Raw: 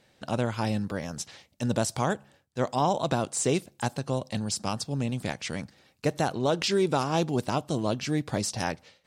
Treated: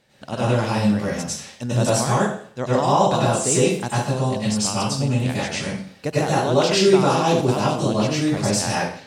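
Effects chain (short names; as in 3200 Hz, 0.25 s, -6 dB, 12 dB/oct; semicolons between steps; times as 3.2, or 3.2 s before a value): plate-style reverb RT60 0.53 s, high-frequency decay 0.95×, pre-delay 85 ms, DRR -8 dB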